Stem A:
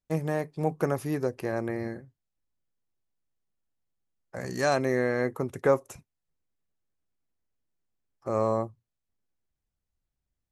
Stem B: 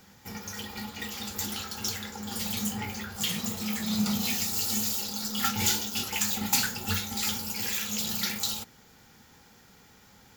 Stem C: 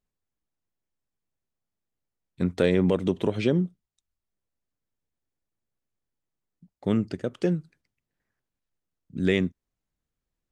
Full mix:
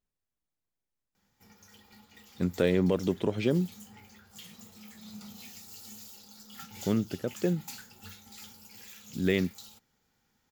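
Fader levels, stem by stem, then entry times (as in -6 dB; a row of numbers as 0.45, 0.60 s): off, -18.5 dB, -3.5 dB; off, 1.15 s, 0.00 s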